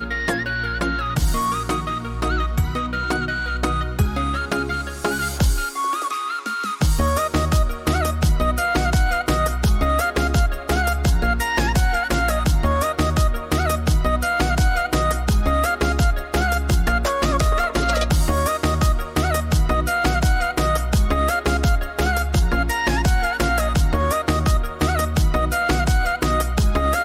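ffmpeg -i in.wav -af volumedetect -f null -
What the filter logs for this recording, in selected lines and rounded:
mean_volume: -19.3 dB
max_volume: -7.8 dB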